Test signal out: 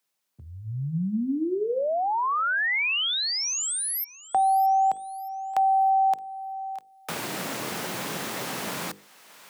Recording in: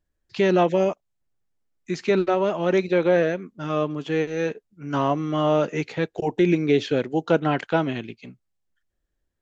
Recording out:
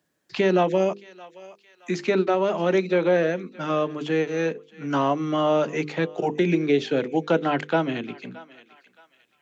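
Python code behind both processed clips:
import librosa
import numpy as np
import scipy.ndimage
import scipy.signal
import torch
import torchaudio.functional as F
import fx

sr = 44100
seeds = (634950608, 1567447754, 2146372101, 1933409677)

y = scipy.signal.sosfilt(scipy.signal.butter(4, 140.0, 'highpass', fs=sr, output='sos'), x)
y = fx.hum_notches(y, sr, base_hz=50, count=10)
y = fx.echo_thinned(y, sr, ms=621, feedback_pct=24, hz=1100.0, wet_db=-22)
y = fx.band_squash(y, sr, depth_pct=40)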